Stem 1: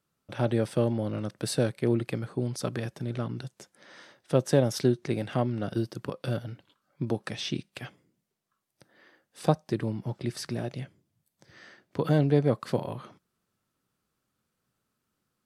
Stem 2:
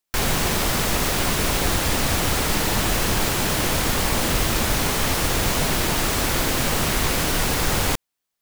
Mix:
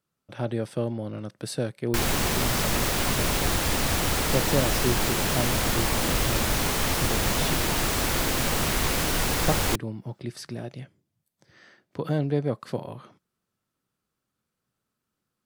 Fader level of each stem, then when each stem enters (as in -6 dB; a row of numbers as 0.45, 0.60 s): -2.5, -3.5 dB; 0.00, 1.80 s